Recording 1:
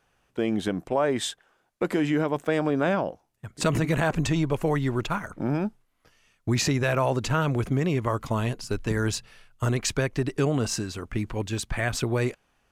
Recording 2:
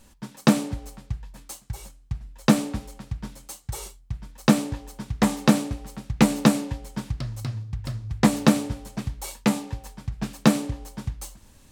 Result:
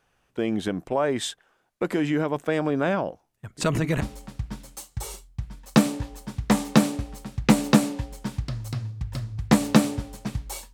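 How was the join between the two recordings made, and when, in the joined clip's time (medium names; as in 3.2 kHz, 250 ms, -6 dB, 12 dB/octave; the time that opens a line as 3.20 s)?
recording 1
4.01 s: go over to recording 2 from 2.73 s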